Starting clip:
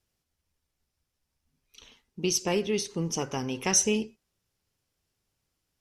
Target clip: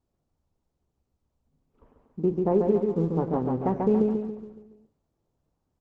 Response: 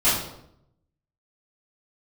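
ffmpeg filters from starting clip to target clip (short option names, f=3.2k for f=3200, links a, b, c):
-filter_complex "[0:a]lowpass=f=1k:w=0.5412,lowpass=f=1k:w=1.3066,asplit=2[a][b];[b]aecho=0:1:140|280|420|560|700|840:0.668|0.321|0.154|0.0739|0.0355|0.017[c];[a][c]amix=inputs=2:normalize=0,volume=4.5dB" -ar 48000 -c:a libopus -b:a 12k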